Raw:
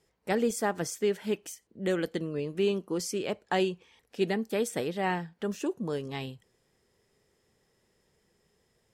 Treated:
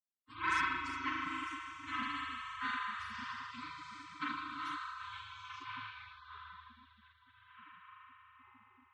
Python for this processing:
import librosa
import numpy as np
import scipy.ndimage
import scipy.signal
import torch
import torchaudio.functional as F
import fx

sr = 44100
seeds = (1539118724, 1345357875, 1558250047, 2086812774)

y = fx.bin_expand(x, sr, power=2.0)
y = fx.echo_diffused(y, sr, ms=936, feedback_pct=63, wet_db=-15.5)
y = fx.filter_sweep_lowpass(y, sr, from_hz=7900.0, to_hz=130.0, start_s=5.27, end_s=8.46, q=4.5)
y = fx.rev_spring(y, sr, rt60_s=3.9, pass_ms=(38,), chirp_ms=35, drr_db=-9.5)
y = fx.spec_gate(y, sr, threshold_db=-30, keep='weak')
y = scipy.signal.sosfilt(scipy.signal.butter(4, 98.0, 'highpass', fs=sr, output='sos'), y)
y = fx.env_lowpass(y, sr, base_hz=890.0, full_db=-22.0)
y = scipy.signal.sosfilt(scipy.signal.ellip(3, 1.0, 40, [370.0, 1000.0], 'bandstop', fs=sr, output='sos'), y)
y = y + 0.74 * np.pad(y, (int(3.9 * sr / 1000.0), 0))[:len(y)]
y = fx.transformer_sat(y, sr, knee_hz=1100.0)
y = y * librosa.db_to_amplitude(16.0)